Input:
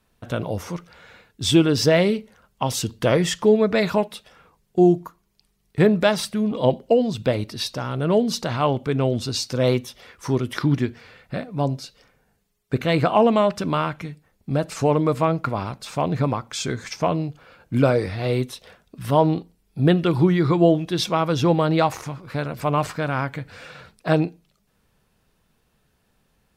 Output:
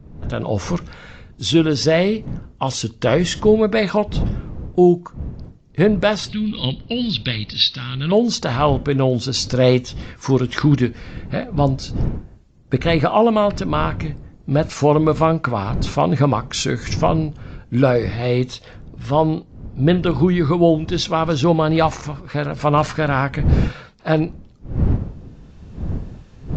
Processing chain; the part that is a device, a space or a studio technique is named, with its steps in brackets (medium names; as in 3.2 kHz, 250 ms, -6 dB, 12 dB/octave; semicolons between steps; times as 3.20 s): 6.29–8.12 s: FFT filter 200 Hz 0 dB, 630 Hz -20 dB, 1.7 kHz +2 dB, 4.1 kHz +14 dB, 7.9 kHz -23 dB; smartphone video outdoors (wind noise 140 Hz -33 dBFS; level rider gain up to 16 dB; trim -2.5 dB; AAC 48 kbps 16 kHz)